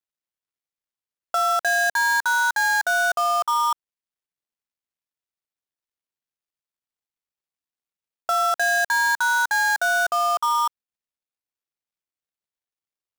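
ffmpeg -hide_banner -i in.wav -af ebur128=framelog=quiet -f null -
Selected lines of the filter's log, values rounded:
Integrated loudness:
  I:         -20.5 LUFS
  Threshold: -30.7 LUFS
Loudness range:
  LRA:         7.7 LU
  Threshold: -43.1 LUFS
  LRA low:   -28.7 LUFS
  LRA high:  -21.0 LUFS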